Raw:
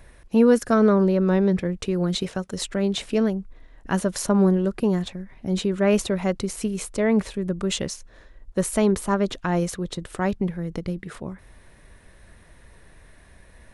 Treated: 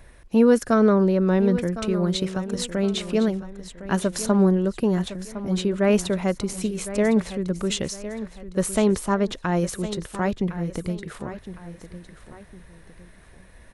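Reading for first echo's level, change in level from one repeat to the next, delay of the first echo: -13.0 dB, -8.5 dB, 1.059 s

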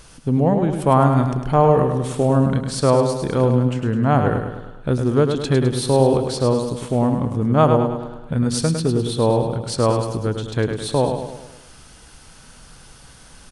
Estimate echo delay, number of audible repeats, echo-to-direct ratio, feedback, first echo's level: 0.104 s, 5, -5.0 dB, 51%, -6.5 dB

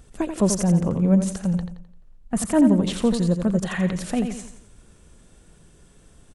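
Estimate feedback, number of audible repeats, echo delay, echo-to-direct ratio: 40%, 4, 86 ms, -6.5 dB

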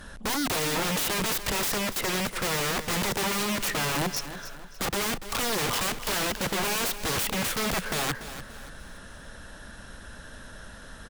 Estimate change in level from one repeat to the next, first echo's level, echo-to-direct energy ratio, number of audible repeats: -8.5 dB, -12.5 dB, -12.0 dB, 3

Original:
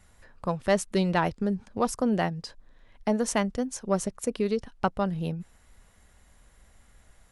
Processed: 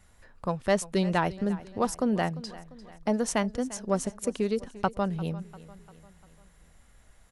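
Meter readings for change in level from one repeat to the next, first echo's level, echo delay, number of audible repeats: -6.0 dB, -18.0 dB, 0.347 s, 3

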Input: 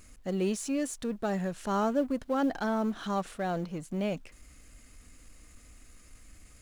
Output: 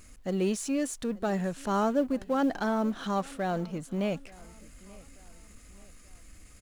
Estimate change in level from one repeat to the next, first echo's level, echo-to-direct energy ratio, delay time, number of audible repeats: -7.0 dB, -23.0 dB, -22.0 dB, 0.883 s, 2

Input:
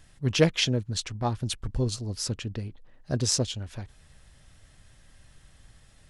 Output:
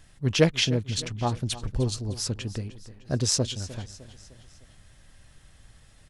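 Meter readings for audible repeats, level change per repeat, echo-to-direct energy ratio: 4, -6.0 dB, -15.5 dB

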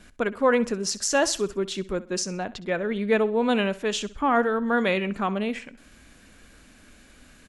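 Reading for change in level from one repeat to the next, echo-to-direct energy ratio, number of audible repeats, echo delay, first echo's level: -9.0 dB, -17.5 dB, 2, 64 ms, -18.0 dB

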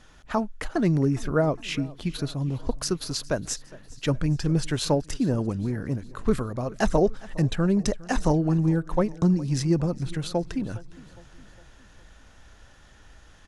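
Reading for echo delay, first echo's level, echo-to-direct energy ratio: 0.41 s, -21.0 dB, -19.5 dB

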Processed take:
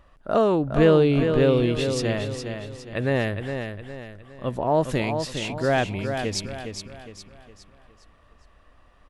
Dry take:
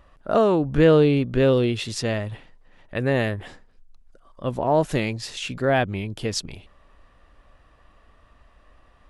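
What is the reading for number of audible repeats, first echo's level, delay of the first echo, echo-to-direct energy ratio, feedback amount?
4, -7.0 dB, 0.411 s, -6.0 dB, 40%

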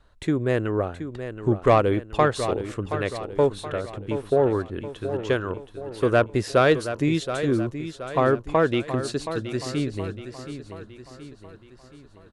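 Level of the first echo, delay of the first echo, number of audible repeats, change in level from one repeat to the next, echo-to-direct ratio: -10.5 dB, 0.724 s, 4, -6.0 dB, -9.5 dB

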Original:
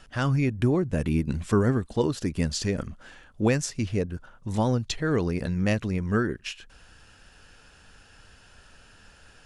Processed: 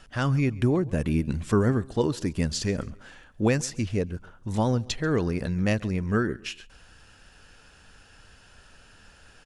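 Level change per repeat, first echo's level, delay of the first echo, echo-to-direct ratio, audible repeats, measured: -9.5 dB, -22.5 dB, 0.136 s, -22.0 dB, 2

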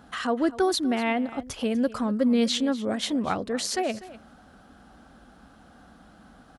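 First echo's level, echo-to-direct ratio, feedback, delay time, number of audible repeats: -17.5 dB, -17.5 dB, no steady repeat, 0.246 s, 1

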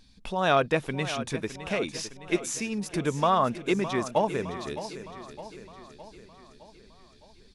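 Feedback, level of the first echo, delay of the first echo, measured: 55%, -12.5 dB, 0.612 s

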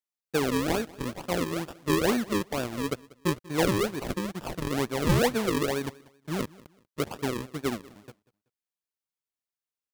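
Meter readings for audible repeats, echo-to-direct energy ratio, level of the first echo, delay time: 2, -21.5 dB, -22.0 dB, 0.19 s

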